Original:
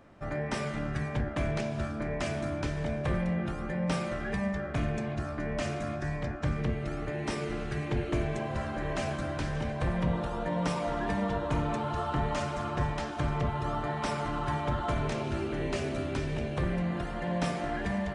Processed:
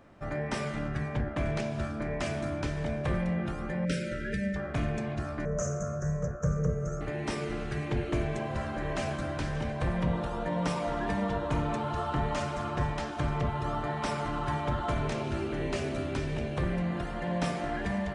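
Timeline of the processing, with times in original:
0.88–1.46 s: treble shelf 4 kHz -6 dB
3.85–4.56 s: brick-wall FIR band-stop 610–1300 Hz
5.45–7.01 s: FFT filter 120 Hz 0 dB, 180 Hz +8 dB, 270 Hz -19 dB, 500 Hz +10 dB, 820 Hz -13 dB, 1.3 kHz +2 dB, 2.4 kHz -21 dB, 4.2 kHz -27 dB, 6.4 kHz +15 dB, 9.6 kHz -11 dB

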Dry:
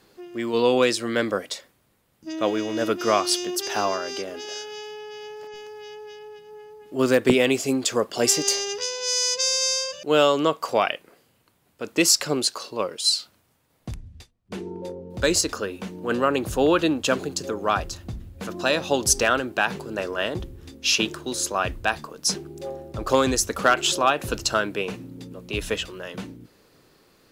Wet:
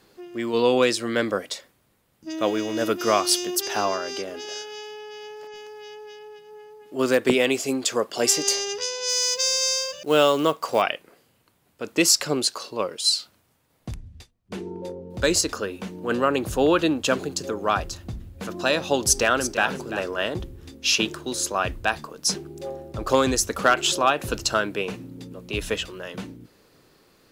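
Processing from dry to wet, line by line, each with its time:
2.30–3.61 s: treble shelf 10 kHz +9.5 dB
4.62–8.43 s: bass shelf 160 Hz -9.5 dB
9.09–10.82 s: companded quantiser 6-bit
19.02–19.65 s: echo throw 340 ms, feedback 10%, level -10.5 dB

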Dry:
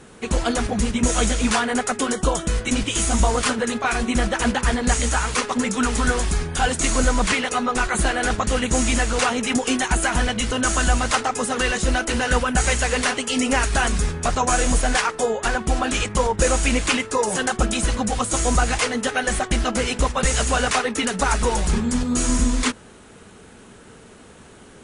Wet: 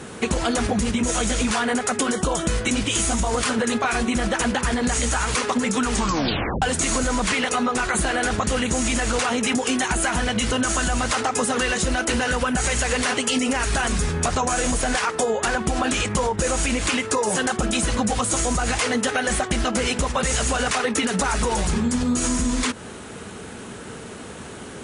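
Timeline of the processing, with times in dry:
5.93 s: tape stop 0.69 s
whole clip: high-pass 60 Hz; peak limiter -15 dBFS; compression, threshold -28 dBFS; trim +9 dB

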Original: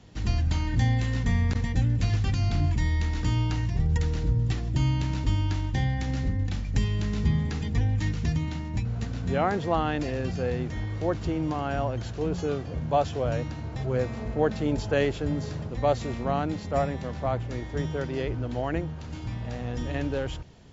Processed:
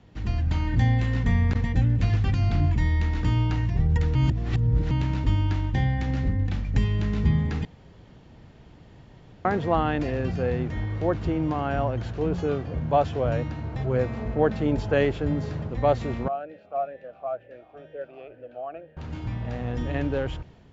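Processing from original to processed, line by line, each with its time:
4.15–4.91 s: reverse
7.65–9.45 s: room tone
16.28–18.97 s: talking filter a-e 2.1 Hz
whole clip: tone controls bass 0 dB, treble -12 dB; level rider gain up to 4 dB; trim -1.5 dB

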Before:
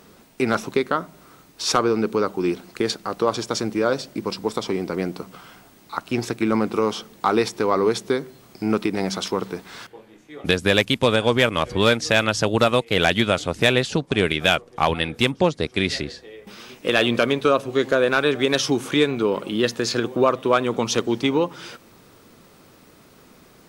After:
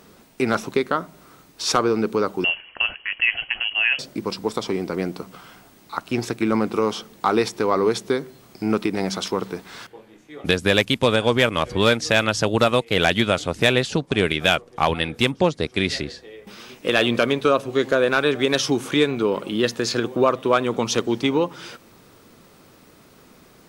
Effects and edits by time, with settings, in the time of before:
2.44–3.99 s: frequency inversion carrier 3.1 kHz

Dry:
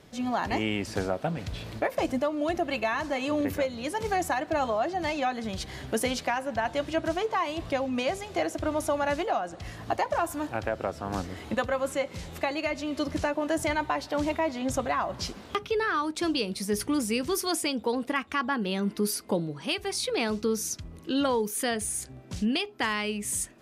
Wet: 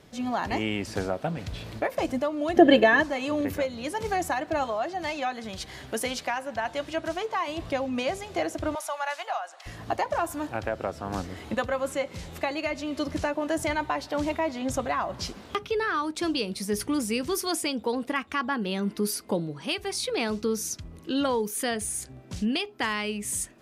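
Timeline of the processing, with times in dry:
2.56–3.02 s: small resonant body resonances 300/460/1700/3100 Hz, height 18 dB -> 14 dB, ringing for 20 ms
4.63–7.48 s: bass shelf 420 Hz -6 dB
8.75–9.66 s: high-pass 730 Hz 24 dB/octave

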